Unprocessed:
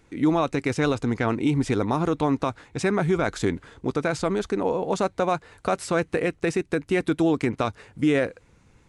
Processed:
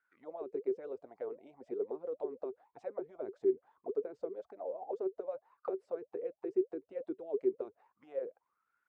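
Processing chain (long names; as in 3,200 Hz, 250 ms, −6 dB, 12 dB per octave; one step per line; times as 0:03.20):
harmonic and percussive parts rebalanced harmonic −14 dB
envelope filter 380–1,500 Hz, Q 17, down, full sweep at −22 dBFS
level +2 dB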